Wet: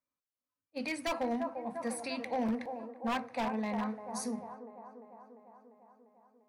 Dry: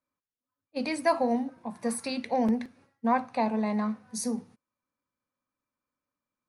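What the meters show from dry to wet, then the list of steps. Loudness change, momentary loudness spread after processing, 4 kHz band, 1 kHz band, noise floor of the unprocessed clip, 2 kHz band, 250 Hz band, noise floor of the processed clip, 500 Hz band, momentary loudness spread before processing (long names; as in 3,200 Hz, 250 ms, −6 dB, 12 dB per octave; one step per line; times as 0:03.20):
−6.5 dB, 18 LU, −3.0 dB, −6.5 dB, below −85 dBFS, −3.0 dB, −7.0 dB, below −85 dBFS, −6.5 dB, 8 LU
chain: delay with a band-pass on its return 347 ms, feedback 66%, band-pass 630 Hz, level −7 dB
dynamic equaliser 2,100 Hz, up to +6 dB, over −48 dBFS, Q 1.2
wave folding −19.5 dBFS
level −7 dB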